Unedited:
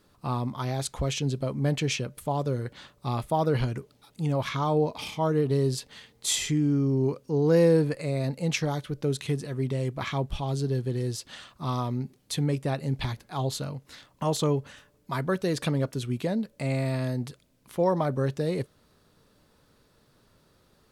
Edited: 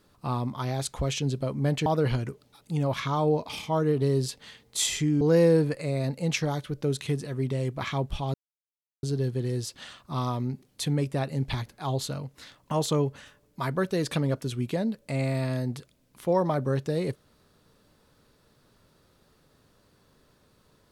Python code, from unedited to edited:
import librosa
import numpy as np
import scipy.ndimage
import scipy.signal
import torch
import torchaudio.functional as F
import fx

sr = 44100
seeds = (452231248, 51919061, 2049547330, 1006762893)

y = fx.edit(x, sr, fx.cut(start_s=1.86, length_s=1.49),
    fx.cut(start_s=6.7, length_s=0.71),
    fx.insert_silence(at_s=10.54, length_s=0.69), tone=tone)